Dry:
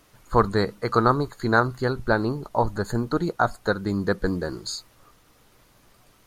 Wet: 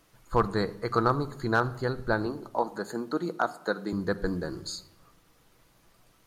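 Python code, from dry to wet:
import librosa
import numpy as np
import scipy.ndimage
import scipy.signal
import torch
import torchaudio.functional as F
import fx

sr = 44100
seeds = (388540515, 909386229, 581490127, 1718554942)

y = fx.highpass(x, sr, hz=200.0, slope=24, at=(2.26, 3.93))
y = np.clip(y, -10.0 ** (-7.5 / 20.0), 10.0 ** (-7.5 / 20.0))
y = fx.room_shoebox(y, sr, seeds[0], volume_m3=2900.0, walls='furnished', distance_m=0.7)
y = F.gain(torch.from_numpy(y), -5.5).numpy()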